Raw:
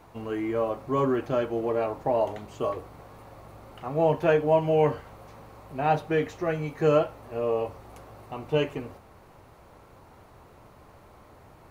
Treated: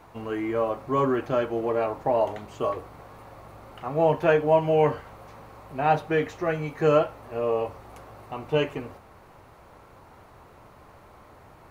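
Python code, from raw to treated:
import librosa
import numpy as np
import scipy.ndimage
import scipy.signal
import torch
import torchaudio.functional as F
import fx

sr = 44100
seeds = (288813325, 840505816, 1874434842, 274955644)

y = fx.peak_eq(x, sr, hz=1400.0, db=3.5, octaves=2.2)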